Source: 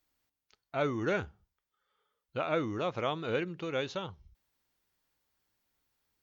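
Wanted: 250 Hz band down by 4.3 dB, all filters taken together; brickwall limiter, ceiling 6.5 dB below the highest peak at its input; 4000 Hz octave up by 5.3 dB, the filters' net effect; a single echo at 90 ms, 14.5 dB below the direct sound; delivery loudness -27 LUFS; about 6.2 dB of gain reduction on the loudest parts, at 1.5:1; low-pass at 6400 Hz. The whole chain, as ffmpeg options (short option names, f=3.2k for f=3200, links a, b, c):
-af "lowpass=6.4k,equalizer=f=250:t=o:g=-6.5,equalizer=f=4k:t=o:g=7,acompressor=threshold=-44dB:ratio=1.5,alimiter=level_in=4.5dB:limit=-24dB:level=0:latency=1,volume=-4.5dB,aecho=1:1:90:0.188,volume=14.5dB"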